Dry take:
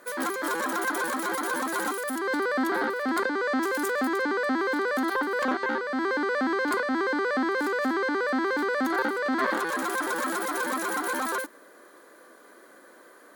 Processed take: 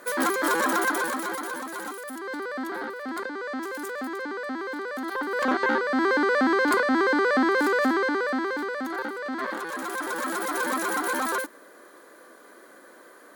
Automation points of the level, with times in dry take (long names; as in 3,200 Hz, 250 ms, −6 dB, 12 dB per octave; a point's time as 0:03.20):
0:00.74 +5 dB
0:01.67 −6 dB
0:05.00 −6 dB
0:05.61 +4.5 dB
0:07.80 +4.5 dB
0:08.83 −5 dB
0:09.59 −5 dB
0:10.66 +2 dB